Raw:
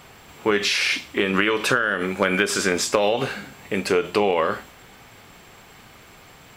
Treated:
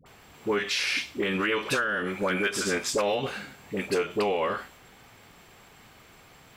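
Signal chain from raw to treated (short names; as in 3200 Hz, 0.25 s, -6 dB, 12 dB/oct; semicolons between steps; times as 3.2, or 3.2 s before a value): dispersion highs, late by 61 ms, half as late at 720 Hz; gain -6 dB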